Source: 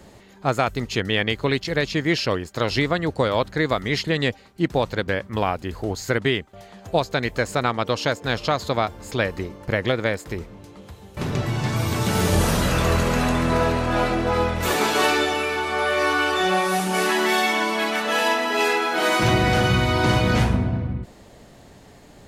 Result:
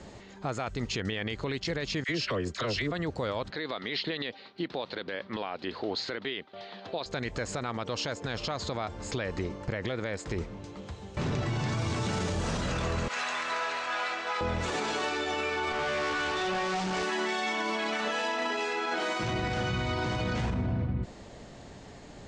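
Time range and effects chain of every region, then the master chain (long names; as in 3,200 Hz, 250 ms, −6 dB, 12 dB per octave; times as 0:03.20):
0:02.04–0:02.92: notch filter 840 Hz, Q 5.3 + all-pass dispersion lows, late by 50 ms, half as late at 1,000 Hz
0:03.50–0:07.06: high-pass filter 250 Hz + high shelf with overshoot 5,500 Hz −11.5 dB, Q 3
0:13.08–0:14.41: high-pass filter 1,400 Hz + spectral tilt −1.5 dB per octave
0:15.72–0:17.03: tube saturation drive 28 dB, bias 0.7 + linearly interpolated sample-rate reduction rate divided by 3×
whole clip: Butterworth low-pass 7,800 Hz 36 dB per octave; downward compressor 2 to 1, threshold −23 dBFS; brickwall limiter −22.5 dBFS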